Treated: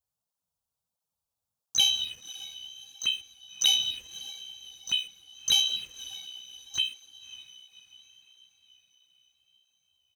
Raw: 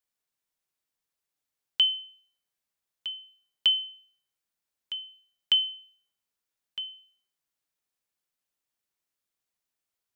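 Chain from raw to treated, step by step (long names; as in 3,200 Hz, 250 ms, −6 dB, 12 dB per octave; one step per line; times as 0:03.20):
pitch-shifted copies added −3 semitones −13 dB, +4 semitones −9 dB, +12 semitones −12 dB
in parallel at −1.5 dB: brickwall limiter −21 dBFS, peak gain reduction 11 dB
on the sum: four-comb reverb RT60 3.2 s, combs from 27 ms, DRR 10.5 dB
soft clipping −10 dBFS, distortion −22 dB
phaser swept by the level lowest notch 340 Hz, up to 2,200 Hz, full sweep at −21 dBFS
leveller curve on the samples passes 2
low-shelf EQ 490 Hz +12 dB
on a send: feedback delay with all-pass diffusion 584 ms, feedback 49%, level −16 dB
on the sum: through-zero flanger with one copy inverted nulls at 1.5 Hz, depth 6.8 ms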